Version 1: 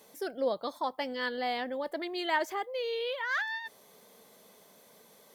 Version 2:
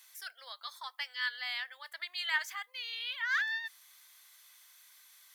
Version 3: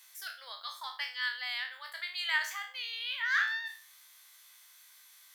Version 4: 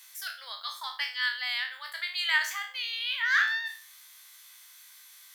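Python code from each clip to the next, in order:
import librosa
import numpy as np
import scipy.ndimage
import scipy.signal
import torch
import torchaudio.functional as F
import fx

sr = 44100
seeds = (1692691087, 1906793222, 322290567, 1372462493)

y1 = scipy.signal.sosfilt(scipy.signal.butter(4, 1400.0, 'highpass', fs=sr, output='sos'), x)
y1 = y1 * librosa.db_to_amplitude(2.0)
y2 = fx.spec_trails(y1, sr, decay_s=0.4)
y3 = fx.highpass(y2, sr, hz=830.0, slope=6)
y3 = y3 * librosa.db_to_amplitude(5.5)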